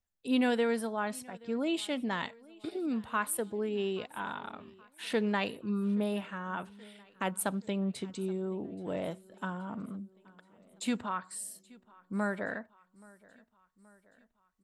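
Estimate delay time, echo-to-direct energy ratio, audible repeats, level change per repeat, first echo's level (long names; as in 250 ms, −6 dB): 826 ms, −22.5 dB, 3, −5.0 dB, −24.0 dB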